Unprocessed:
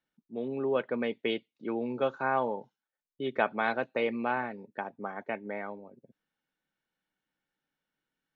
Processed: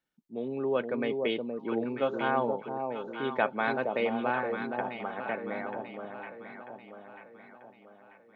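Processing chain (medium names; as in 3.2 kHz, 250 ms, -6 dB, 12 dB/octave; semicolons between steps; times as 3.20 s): echo whose repeats swap between lows and highs 470 ms, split 890 Hz, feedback 67%, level -4 dB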